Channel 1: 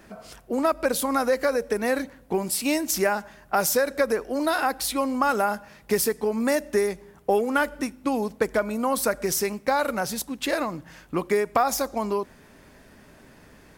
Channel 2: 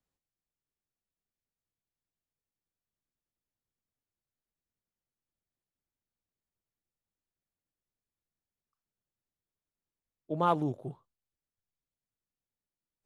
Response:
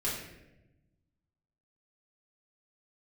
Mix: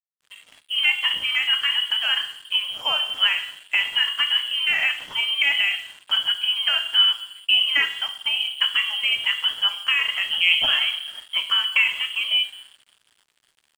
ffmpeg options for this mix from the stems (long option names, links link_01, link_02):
-filter_complex "[0:a]highshelf=frequency=2400:gain=4,adelay=200,volume=-5.5dB,asplit=2[link_01][link_02];[link_02]volume=-9dB[link_03];[1:a]lowpass=1200,volume=0dB,asplit=2[link_04][link_05];[link_05]volume=-5dB[link_06];[2:a]atrim=start_sample=2205[link_07];[link_03][link_06]amix=inputs=2:normalize=0[link_08];[link_08][link_07]afir=irnorm=-1:irlink=0[link_09];[link_01][link_04][link_09]amix=inputs=3:normalize=0,acontrast=23,lowpass=frequency=2900:width_type=q:width=0.5098,lowpass=frequency=2900:width_type=q:width=0.6013,lowpass=frequency=2900:width_type=q:width=0.9,lowpass=frequency=2900:width_type=q:width=2.563,afreqshift=-3400,aeval=exprs='sgn(val(0))*max(abs(val(0))-0.00708,0)':channel_layout=same"